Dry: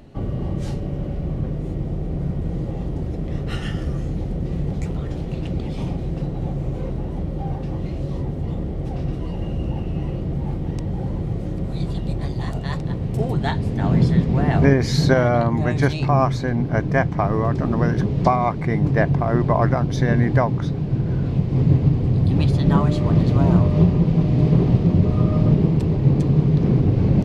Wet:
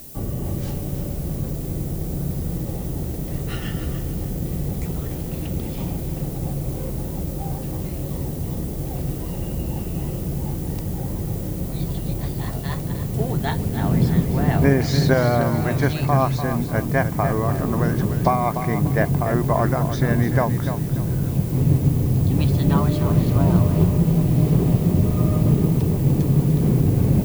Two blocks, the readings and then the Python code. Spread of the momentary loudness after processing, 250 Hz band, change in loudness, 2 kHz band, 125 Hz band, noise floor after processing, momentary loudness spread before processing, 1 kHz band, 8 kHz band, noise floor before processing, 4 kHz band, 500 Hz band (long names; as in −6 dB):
10 LU, −1.0 dB, −1.0 dB, −1.0 dB, −1.0 dB, −29 dBFS, 10 LU, −1.0 dB, can't be measured, −28 dBFS, −0.5 dB, −1.0 dB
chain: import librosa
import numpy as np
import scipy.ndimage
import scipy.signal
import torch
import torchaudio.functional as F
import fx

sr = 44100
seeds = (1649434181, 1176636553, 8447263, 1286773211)

y = fx.dmg_noise_colour(x, sr, seeds[0], colour='violet', level_db=-39.0)
y = fx.echo_crushed(y, sr, ms=295, feedback_pct=35, bits=6, wet_db=-9.0)
y = y * librosa.db_to_amplitude(-1.5)